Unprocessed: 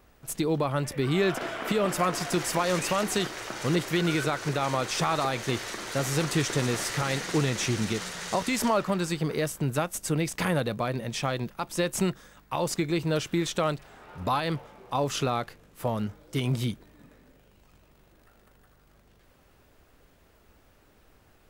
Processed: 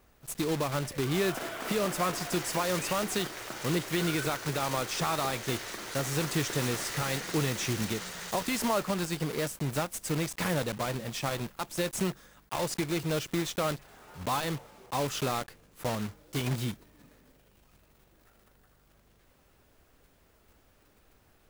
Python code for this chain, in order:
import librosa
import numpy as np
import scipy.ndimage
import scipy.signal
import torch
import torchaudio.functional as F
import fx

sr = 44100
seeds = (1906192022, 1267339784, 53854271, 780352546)

y = fx.block_float(x, sr, bits=3)
y = y * librosa.db_to_amplitude(-4.0)